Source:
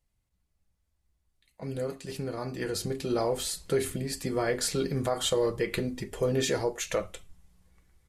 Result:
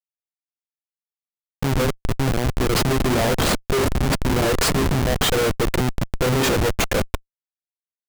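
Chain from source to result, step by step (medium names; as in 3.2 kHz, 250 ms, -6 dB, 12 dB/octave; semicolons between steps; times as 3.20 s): 2.75–3.31 s: comb 7.4 ms, depth 66%; level rider gain up to 14.5 dB; Schmitt trigger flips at -16.5 dBFS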